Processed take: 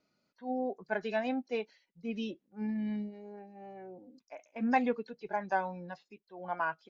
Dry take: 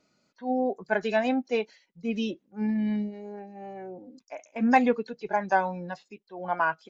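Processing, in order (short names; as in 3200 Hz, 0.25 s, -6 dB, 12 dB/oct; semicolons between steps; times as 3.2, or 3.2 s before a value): LPF 5900 Hz 24 dB/oct; gain -7.5 dB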